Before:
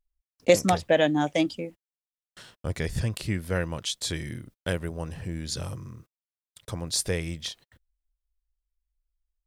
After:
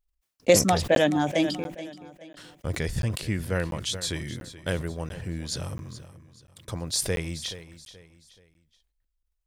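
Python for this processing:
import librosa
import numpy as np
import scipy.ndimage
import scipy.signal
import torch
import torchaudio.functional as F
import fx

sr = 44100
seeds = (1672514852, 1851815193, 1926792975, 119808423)

y = fx.echo_feedback(x, sr, ms=428, feedback_pct=37, wet_db=-15)
y = fx.buffer_crackle(y, sr, first_s=0.95, period_s=0.69, block=512, kind='zero')
y = fx.sustainer(y, sr, db_per_s=92.0)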